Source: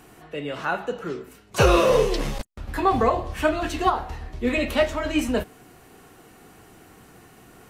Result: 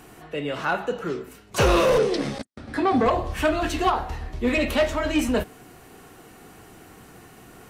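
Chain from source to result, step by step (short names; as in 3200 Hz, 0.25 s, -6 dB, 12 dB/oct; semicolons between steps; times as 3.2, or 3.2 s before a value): soft clip -16 dBFS, distortion -12 dB; 1.98–3.06 speaker cabinet 130–8800 Hz, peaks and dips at 260 Hz +7 dB, 990 Hz -7 dB, 2800 Hz -6 dB, 6900 Hz -8 dB; gain +2.5 dB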